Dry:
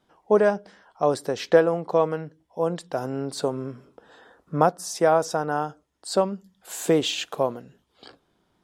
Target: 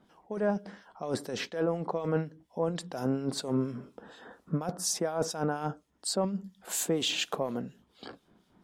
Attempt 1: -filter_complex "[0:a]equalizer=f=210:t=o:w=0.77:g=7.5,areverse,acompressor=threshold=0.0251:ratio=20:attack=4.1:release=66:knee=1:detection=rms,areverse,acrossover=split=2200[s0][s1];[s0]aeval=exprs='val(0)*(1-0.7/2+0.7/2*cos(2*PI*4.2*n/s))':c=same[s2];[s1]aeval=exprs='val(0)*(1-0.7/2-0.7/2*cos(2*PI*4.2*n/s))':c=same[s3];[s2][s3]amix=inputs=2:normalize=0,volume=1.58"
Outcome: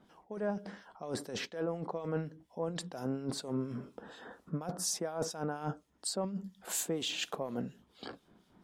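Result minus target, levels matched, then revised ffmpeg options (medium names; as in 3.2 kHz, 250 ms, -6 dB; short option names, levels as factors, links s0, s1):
compression: peak gain reduction +6 dB
-filter_complex "[0:a]equalizer=f=210:t=o:w=0.77:g=7.5,areverse,acompressor=threshold=0.0531:ratio=20:attack=4.1:release=66:knee=1:detection=rms,areverse,acrossover=split=2200[s0][s1];[s0]aeval=exprs='val(0)*(1-0.7/2+0.7/2*cos(2*PI*4.2*n/s))':c=same[s2];[s1]aeval=exprs='val(0)*(1-0.7/2-0.7/2*cos(2*PI*4.2*n/s))':c=same[s3];[s2][s3]amix=inputs=2:normalize=0,volume=1.58"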